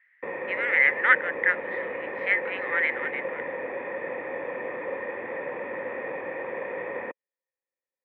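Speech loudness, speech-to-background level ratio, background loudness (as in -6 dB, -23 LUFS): -24.0 LUFS, 9.5 dB, -33.5 LUFS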